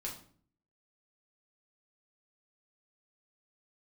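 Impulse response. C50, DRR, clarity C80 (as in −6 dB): 8.0 dB, −3.0 dB, 12.5 dB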